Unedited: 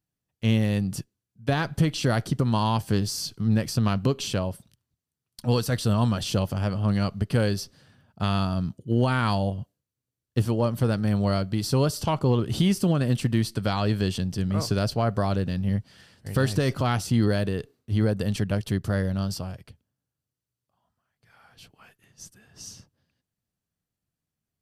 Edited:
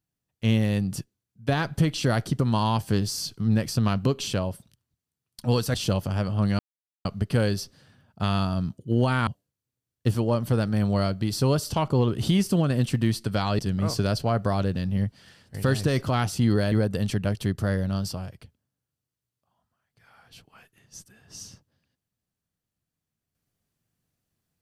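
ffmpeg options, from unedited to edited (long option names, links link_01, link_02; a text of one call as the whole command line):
ffmpeg -i in.wav -filter_complex "[0:a]asplit=6[link_01][link_02][link_03][link_04][link_05][link_06];[link_01]atrim=end=5.742[link_07];[link_02]atrim=start=6.198:end=7.05,asetpts=PTS-STARTPTS,afade=type=out:start_time=0.848:duration=0.004:curve=hsin,apad=pad_dur=0.46[link_08];[link_03]atrim=start=7.05:end=9.272,asetpts=PTS-STARTPTS,afade=type=in:duration=0.004:curve=hsin[link_09];[link_04]atrim=start=9.578:end=13.902[link_10];[link_05]atrim=start=14.308:end=17.442[link_11];[link_06]atrim=start=17.978[link_12];[link_08][link_09]concat=n=2:v=0:a=1[link_13];[link_07][link_13]acrossfade=duration=0.004:curve1=hsin:curve2=hsin[link_14];[link_14][link_10]acrossfade=duration=0.004:curve1=hsin:curve2=hsin[link_15];[link_15][link_11]acrossfade=duration=0.004:curve1=hsin:curve2=hsin[link_16];[link_16][link_12]acrossfade=duration=0.004:curve1=hsin:curve2=hsin" out.wav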